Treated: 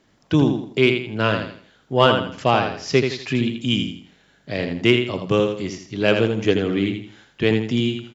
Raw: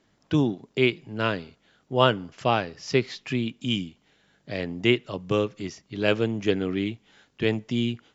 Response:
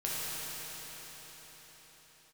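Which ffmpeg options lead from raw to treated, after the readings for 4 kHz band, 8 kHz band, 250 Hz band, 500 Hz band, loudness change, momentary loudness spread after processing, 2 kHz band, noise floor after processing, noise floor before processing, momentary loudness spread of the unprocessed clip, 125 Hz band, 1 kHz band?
+5.5 dB, can't be measured, +5.5 dB, +6.0 dB, +5.5 dB, 9 LU, +5.5 dB, −59 dBFS, −67 dBFS, 9 LU, +6.0 dB, +5.5 dB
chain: -af "aecho=1:1:82|164|246|328:0.473|0.156|0.0515|0.017,acontrast=31"

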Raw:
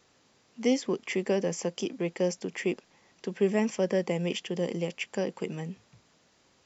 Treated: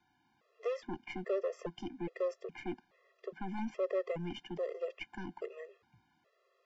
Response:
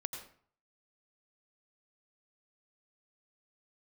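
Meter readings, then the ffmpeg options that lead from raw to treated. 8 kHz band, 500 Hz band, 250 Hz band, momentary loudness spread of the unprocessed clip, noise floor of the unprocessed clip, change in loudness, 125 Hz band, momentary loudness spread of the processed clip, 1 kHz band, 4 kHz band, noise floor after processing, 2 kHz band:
can't be measured, −7.5 dB, −12.5 dB, 11 LU, −66 dBFS, −9.0 dB, −13.0 dB, 10 LU, −5.0 dB, −13.5 dB, −75 dBFS, −10.5 dB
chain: -filter_complex "[0:a]aeval=exprs='(tanh(17.8*val(0)+0.6)-tanh(0.6))/17.8':channel_layout=same,lowpass=3400,acrossover=split=210|430|2000[link_01][link_02][link_03][link_04];[link_02]aemphasis=mode=reproduction:type=75fm[link_05];[link_03]acontrast=73[link_06];[link_01][link_05][link_06][link_04]amix=inputs=4:normalize=0,afftfilt=real='re*gt(sin(2*PI*1.2*pts/sr)*(1-2*mod(floor(b*sr/1024/350),2)),0)':imag='im*gt(sin(2*PI*1.2*pts/sr)*(1-2*mod(floor(b*sr/1024/350),2)),0)':win_size=1024:overlap=0.75,volume=-5.5dB"

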